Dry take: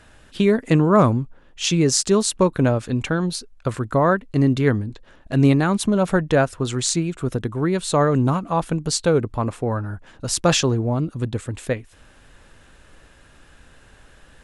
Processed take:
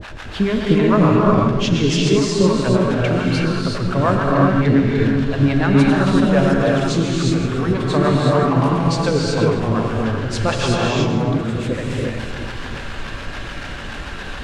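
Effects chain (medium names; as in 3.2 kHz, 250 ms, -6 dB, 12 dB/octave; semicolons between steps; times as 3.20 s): jump at every zero crossing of -25 dBFS; low-pass 3.7 kHz 12 dB/octave; two-band feedback delay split 490 Hz, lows 351 ms, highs 82 ms, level -5.5 dB; harmonic tremolo 7 Hz, depth 100%, crossover 490 Hz; gated-style reverb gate 400 ms rising, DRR -2.5 dB; trim +1.5 dB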